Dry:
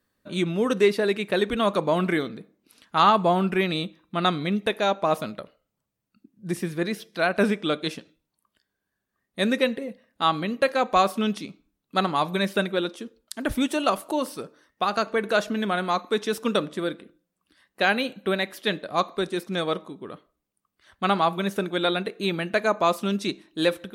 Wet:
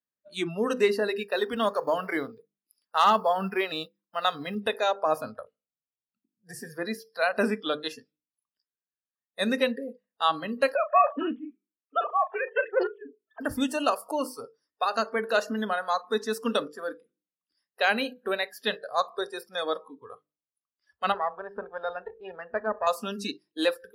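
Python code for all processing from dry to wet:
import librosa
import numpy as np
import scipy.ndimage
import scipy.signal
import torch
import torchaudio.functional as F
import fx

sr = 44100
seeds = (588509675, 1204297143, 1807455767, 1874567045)

y = fx.chain(x, sr, fx.law_mismatch(coded='A'),
    fx.low_shelf(hz=61.0, db=-11.5),
    fx.clip_hard(threshold_db=-10.0), at=(1.15, 4.55))
y = fx.chain(y, sr, fx.sine_speech(),
    fx.doubler(ms=35.0, db=-12.0),
    fx.doppler_dist(depth_ms=0.21), at=(10.75, 13.41))
y = fx.chain(y, sr, fx.halfwave_gain(db=-7.0),
    fx.air_absorb(metres=430.0), at=(21.12, 22.87))
y = scipy.signal.sosfilt(scipy.signal.butter(2, 92.0, 'highpass', fs=sr, output='sos'), y)
y = fx.hum_notches(y, sr, base_hz=50, count=10)
y = fx.noise_reduce_blind(y, sr, reduce_db=23)
y = y * librosa.db_to_amplitude(-2.0)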